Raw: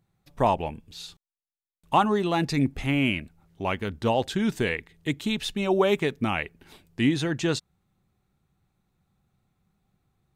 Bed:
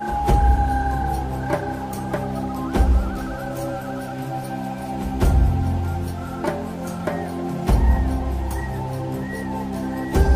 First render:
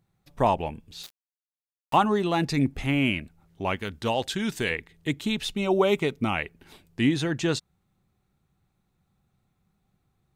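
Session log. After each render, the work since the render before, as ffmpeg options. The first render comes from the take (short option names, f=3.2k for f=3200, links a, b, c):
-filter_complex "[0:a]asettb=1/sr,asplit=3[a][b][c];[a]atrim=end=1.034[d];[b]atrim=start=1.03:end=1.96,asetpts=PTS-STARTPTS,afade=t=in:d=0.004:c=qsin,afade=t=out:st=0.926:d=0.004:c=qsin,aeval=exprs='val(0)*gte(abs(val(0)),0.0141)':c=same[e];[c]atrim=start=1.956[f];[d][e]acrossfade=d=0.004:c1=hsin:c2=qsin[g];[g][f]acrossfade=d=0.004:c1=qsin:c2=hsin,asettb=1/sr,asplit=3[h][i][j];[h]atrim=end=3.764[k];[i]atrim=start=3.76:end=4.71,asetpts=PTS-STARTPTS,afade=t=in:d=0.004:c=qsin,afade=t=out:st=0.946:d=0.004:c=qsin,tiltshelf=f=1.4k:g=-4[l];[j]atrim=start=4.706[m];[k][l]acrossfade=d=0.004:c1=hsin:c2=qsin[n];[n][m]acrossfade=d=0.004:c1=qsin:c2=hsin,asettb=1/sr,asplit=3[o][p][q];[o]atrim=end=5.464[r];[p]atrim=start=5.46:end=6.34,asetpts=PTS-STARTPTS,afade=t=in:d=0.004:c=qsin,afade=t=out:st=0.876:d=0.004:c=qsin,asuperstop=centerf=1700:order=4:qfactor=6.6[s];[q]atrim=start=6.336[t];[r][s]acrossfade=d=0.004:c1=hsin:c2=qsin[u];[u][t]acrossfade=d=0.004:c1=qsin:c2=hsin"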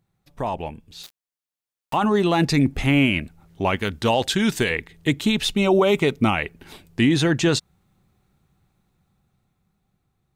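-af "alimiter=limit=-17.5dB:level=0:latency=1:release=11,dynaudnorm=f=400:g=9:m=8dB"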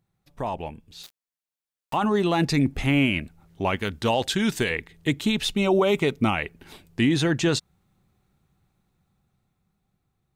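-af "volume=-3dB"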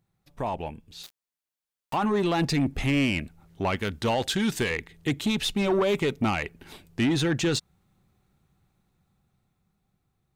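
-af "asoftclip=type=tanh:threshold=-18dB"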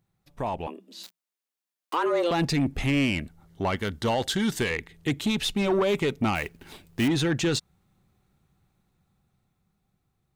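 -filter_complex "[0:a]asettb=1/sr,asplit=3[a][b][c];[a]atrim=end=0.674[d];[b]atrim=start=0.67:end=2.31,asetpts=PTS-STARTPTS,afade=t=in:d=0.004:c=qsin,afade=t=out:st=1.636:d=0.004:c=qsin,afreqshift=170[e];[c]atrim=start=2.306[f];[d][e]acrossfade=d=0.004:c1=hsin:c2=qsin[g];[g][f]acrossfade=d=0.004:c1=qsin:c2=hsin,asettb=1/sr,asplit=3[h][i][j];[h]atrim=end=3.154[k];[i]atrim=start=3.15:end=4.59,asetpts=PTS-STARTPTS,afade=t=in:d=0.004:c=qsin,afade=t=out:st=1.436:d=0.004:c=qsin,bandreject=f=2.5k:w=7.5[l];[j]atrim=start=4.586[m];[k][l]acrossfade=d=0.004:c1=hsin:c2=qsin[n];[n][m]acrossfade=d=0.004:c1=qsin:c2=hsin,asettb=1/sr,asplit=3[o][p][q];[o]atrim=end=6.354[r];[p]atrim=start=6.35:end=7.08,asetpts=PTS-STARTPTS,afade=t=in:d=0.004:c=qsin,afade=t=out:st=0.726:d=0.004:c=qsin,acrusher=bits=4:mode=log:mix=0:aa=0.000001[s];[q]atrim=start=7.076[t];[r][s]acrossfade=d=0.004:c1=hsin:c2=qsin[u];[u][t]acrossfade=d=0.004:c1=qsin:c2=hsin"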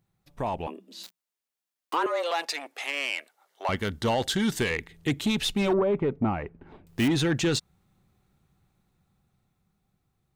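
-filter_complex "[0:a]asettb=1/sr,asplit=3[a][b][c];[a]atrim=end=2.064[d];[b]atrim=start=2.06:end=3.69,asetpts=PTS-STARTPTS,afade=t=in:d=0.004:c=qsin,afade=t=out:st=1.626:d=0.004:c=qsin,highpass=f=560:w=0.5412,highpass=f=560:w=1.3066[e];[c]atrim=start=3.686[f];[d][e]acrossfade=d=0.004:c1=hsin:c2=qsin[g];[g][f]acrossfade=d=0.004:c1=qsin:c2=hsin,asettb=1/sr,asplit=3[h][i][j];[h]atrim=end=5.734[k];[i]atrim=start=5.73:end=6.87,asetpts=PTS-STARTPTS,afade=t=in:d=0.004:c=qsin,afade=t=out:st=1.136:d=0.004:c=qsin,lowpass=1.1k[l];[j]atrim=start=6.866[m];[k][l]acrossfade=d=0.004:c1=hsin:c2=qsin[n];[n][m]acrossfade=d=0.004:c1=qsin:c2=hsin"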